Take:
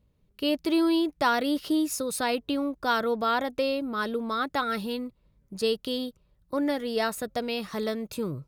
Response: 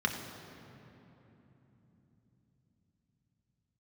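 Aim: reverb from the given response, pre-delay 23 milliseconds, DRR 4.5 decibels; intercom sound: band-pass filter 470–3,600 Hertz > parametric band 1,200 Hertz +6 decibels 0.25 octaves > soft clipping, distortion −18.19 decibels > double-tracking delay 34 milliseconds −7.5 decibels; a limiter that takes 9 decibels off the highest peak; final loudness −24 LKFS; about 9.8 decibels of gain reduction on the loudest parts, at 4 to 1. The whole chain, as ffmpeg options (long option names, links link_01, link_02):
-filter_complex "[0:a]acompressor=threshold=-32dB:ratio=4,alimiter=level_in=6dB:limit=-24dB:level=0:latency=1,volume=-6dB,asplit=2[link_01][link_02];[1:a]atrim=start_sample=2205,adelay=23[link_03];[link_02][link_03]afir=irnorm=-1:irlink=0,volume=-12.5dB[link_04];[link_01][link_04]amix=inputs=2:normalize=0,highpass=470,lowpass=3600,equalizer=frequency=1200:width_type=o:width=0.25:gain=6,asoftclip=threshold=-30dB,asplit=2[link_05][link_06];[link_06]adelay=34,volume=-7.5dB[link_07];[link_05][link_07]amix=inputs=2:normalize=0,volume=16.5dB"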